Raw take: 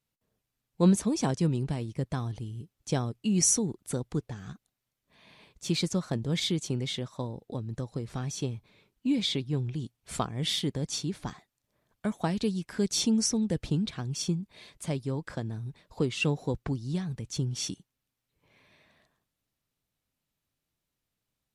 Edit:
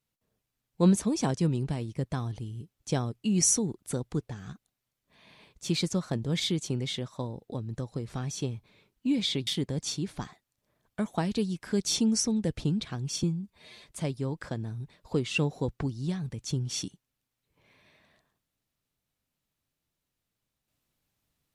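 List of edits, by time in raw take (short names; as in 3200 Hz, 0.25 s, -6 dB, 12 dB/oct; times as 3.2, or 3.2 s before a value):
9.47–10.53 cut
14.29–14.69 stretch 1.5×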